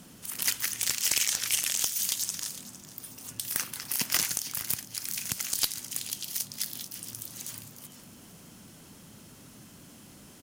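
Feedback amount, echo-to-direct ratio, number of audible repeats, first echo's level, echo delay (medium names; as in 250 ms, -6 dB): 30%, -15.5 dB, 2, -16.0 dB, 456 ms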